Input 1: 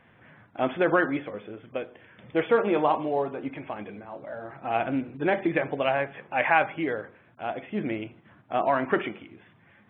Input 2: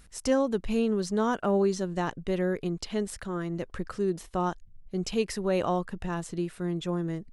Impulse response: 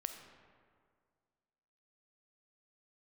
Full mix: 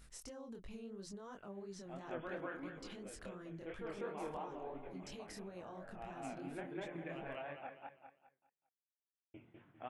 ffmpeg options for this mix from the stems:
-filter_complex "[0:a]adelay=1300,volume=-10.5dB,asplit=3[link_01][link_02][link_03];[link_01]atrim=end=7.67,asetpts=PTS-STARTPTS,afade=type=out:start_time=7.666:duration=0.004:curve=hsin[link_04];[link_02]atrim=start=7.67:end=9.34,asetpts=PTS-STARTPTS,volume=0[link_05];[link_03]atrim=start=9.34,asetpts=PTS-STARTPTS,afade=type=in:duration=0.004:curve=hsin[link_06];[link_04][link_05][link_06]concat=n=3:v=0:a=1,asplit=2[link_07][link_08];[link_08]volume=-4dB[link_09];[1:a]acompressor=threshold=-34dB:ratio=6,alimiter=level_in=10dB:limit=-24dB:level=0:latency=1:release=32,volume=-10dB,volume=-2.5dB,asplit=2[link_10][link_11];[link_11]apad=whole_len=493814[link_12];[link_07][link_12]sidechaincompress=threshold=-54dB:ratio=4:attack=40:release=173[link_13];[link_09]aecho=0:1:200|400|600|800|1000:1|0.33|0.109|0.0359|0.0119[link_14];[link_13][link_10][link_14]amix=inputs=3:normalize=0,flanger=delay=20:depth=6.1:speed=2.9,acompressor=threshold=-50dB:ratio=1.5"

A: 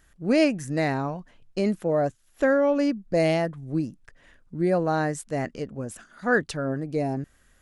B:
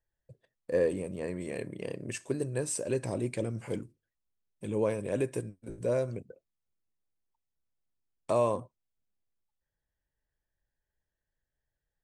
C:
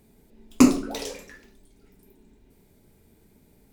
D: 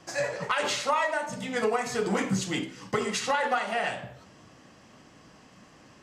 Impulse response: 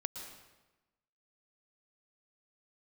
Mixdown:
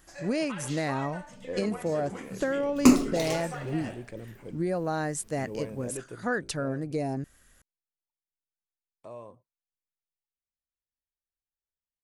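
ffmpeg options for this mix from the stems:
-filter_complex "[0:a]highshelf=frequency=5600:gain=8.5,acompressor=threshold=-24dB:ratio=6,volume=-1.5dB[link_01];[1:a]highshelf=frequency=5400:gain=-9.5,adelay=750,volume=-8.5dB,afade=type=out:start_time=6.34:duration=0.34:silence=0.375837[link_02];[2:a]adelay=2250,volume=-1.5dB[link_03];[3:a]volume=-14dB[link_04];[link_01][link_02][link_03][link_04]amix=inputs=4:normalize=0"

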